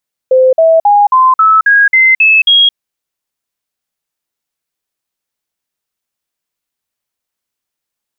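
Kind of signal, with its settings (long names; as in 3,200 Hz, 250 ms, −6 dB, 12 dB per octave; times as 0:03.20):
stepped sweep 517 Hz up, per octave 3, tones 9, 0.22 s, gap 0.05 s −3.5 dBFS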